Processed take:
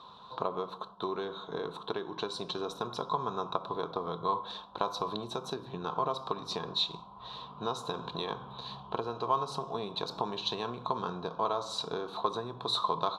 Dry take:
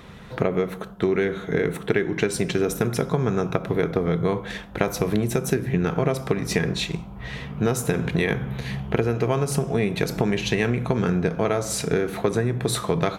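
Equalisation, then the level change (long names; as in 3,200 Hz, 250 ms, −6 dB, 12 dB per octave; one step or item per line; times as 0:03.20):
pair of resonant band-passes 2,000 Hz, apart 1.9 octaves
spectral tilt −2 dB per octave
+6.5 dB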